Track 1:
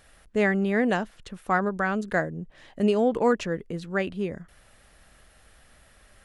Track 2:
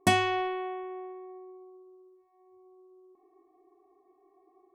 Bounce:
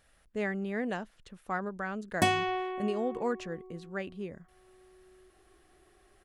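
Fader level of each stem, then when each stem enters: -10.0, -2.5 dB; 0.00, 2.15 s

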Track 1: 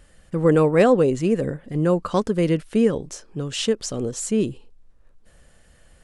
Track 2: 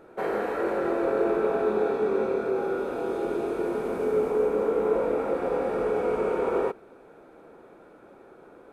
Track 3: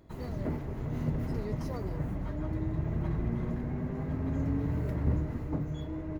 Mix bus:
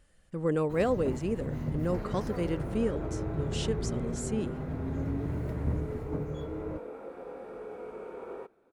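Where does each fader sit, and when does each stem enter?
-11.5, -16.0, -2.0 dB; 0.00, 1.75, 0.60 s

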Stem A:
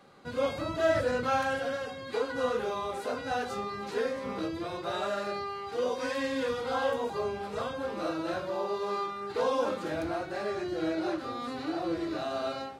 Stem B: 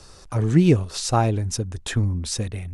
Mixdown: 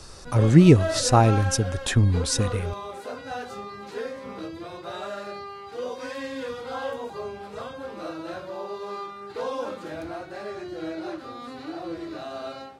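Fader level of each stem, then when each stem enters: -2.0, +2.5 dB; 0.00, 0.00 s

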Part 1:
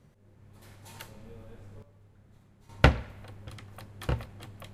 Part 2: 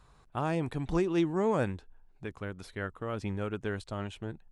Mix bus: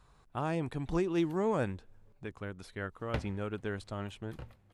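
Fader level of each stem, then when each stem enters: -17.0, -2.5 dB; 0.30, 0.00 s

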